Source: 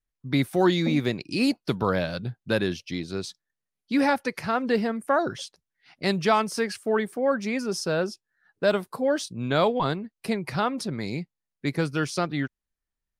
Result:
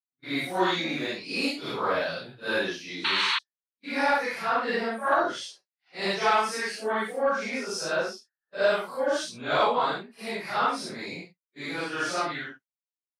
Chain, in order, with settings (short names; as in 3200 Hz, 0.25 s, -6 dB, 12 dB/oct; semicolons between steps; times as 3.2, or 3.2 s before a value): phase scrambler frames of 0.2 s; weighting filter A; expander -47 dBFS; dynamic EQ 1100 Hz, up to +3 dB, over -34 dBFS, Q 0.83; painted sound noise, 3.04–3.39, 850–4500 Hz -25 dBFS; soft clip -10.5 dBFS, distortion -26 dB